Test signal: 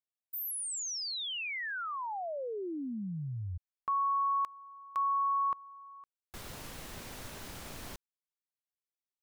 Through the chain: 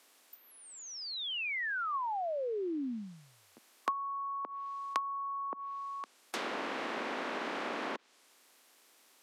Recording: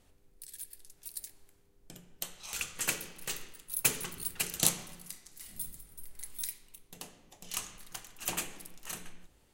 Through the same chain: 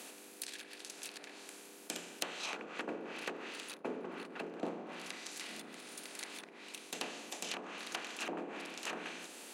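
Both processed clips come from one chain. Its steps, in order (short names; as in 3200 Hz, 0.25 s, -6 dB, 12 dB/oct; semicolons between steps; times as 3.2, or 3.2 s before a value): per-bin compression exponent 0.6; steep high-pass 230 Hz 36 dB/oct; treble ducked by the level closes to 660 Hz, closed at -28 dBFS; gain +1.5 dB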